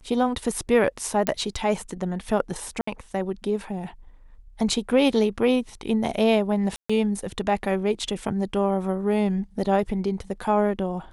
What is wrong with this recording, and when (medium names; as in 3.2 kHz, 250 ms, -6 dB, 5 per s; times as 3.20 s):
1.27 s: pop -6 dBFS
2.81–2.87 s: dropout 64 ms
6.76–6.89 s: dropout 135 ms